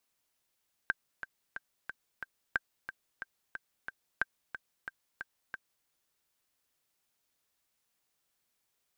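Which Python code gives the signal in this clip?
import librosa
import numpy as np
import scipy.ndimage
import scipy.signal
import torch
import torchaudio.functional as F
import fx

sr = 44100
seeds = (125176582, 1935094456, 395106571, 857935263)

y = fx.click_track(sr, bpm=181, beats=5, bars=3, hz=1570.0, accent_db=11.0, level_db=-15.0)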